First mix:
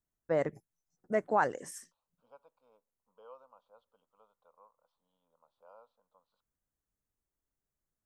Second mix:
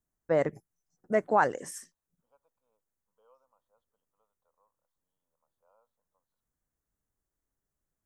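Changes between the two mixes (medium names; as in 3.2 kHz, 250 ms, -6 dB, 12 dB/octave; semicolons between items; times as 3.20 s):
first voice +4.0 dB; second voice -11.5 dB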